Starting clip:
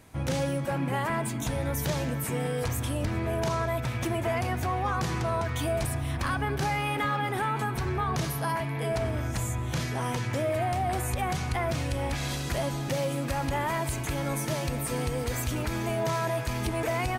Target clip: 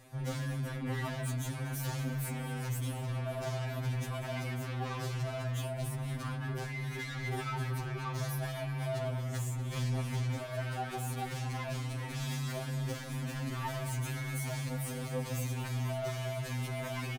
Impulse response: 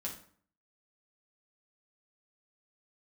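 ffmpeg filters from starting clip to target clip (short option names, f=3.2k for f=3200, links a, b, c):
-filter_complex "[0:a]asettb=1/sr,asplit=3[a][b][c];[a]atrim=end=5.434[d];[b]atrim=start=5.43:end=6.92,asetpts=PTS-STARTPTS,afade=t=in:d=0.004:c=qsin,afade=t=out:st=1.486:d=0.004:c=qsin,acrossover=split=310[e][f];[f]acompressor=threshold=-32dB:ratio=6[g];[e][g]amix=inputs=2:normalize=0[h];[c]atrim=start=6.916[i];[d][h]acrossfade=d=0.004:c1=hsin:c2=qsin[j];[j][i]acrossfade=d=0.004:c1=qsin:c2=hsin,asoftclip=type=tanh:threshold=-33dB,asplit=2[k][l];[l]adelay=239.1,volume=-11dB,highshelf=f=4k:g=-5.38[m];[k][m]amix=inputs=2:normalize=0,afftfilt=real='re*2.45*eq(mod(b,6),0)':imag='im*2.45*eq(mod(b,6),0)':win_size=2048:overlap=0.75"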